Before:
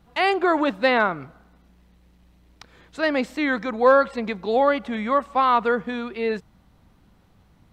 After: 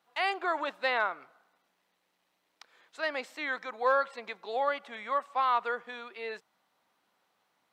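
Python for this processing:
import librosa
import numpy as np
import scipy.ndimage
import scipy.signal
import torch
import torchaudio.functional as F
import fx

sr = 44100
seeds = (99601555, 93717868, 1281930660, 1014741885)

y = scipy.signal.sosfilt(scipy.signal.butter(2, 650.0, 'highpass', fs=sr, output='sos'), x)
y = F.gain(torch.from_numpy(y), -7.5).numpy()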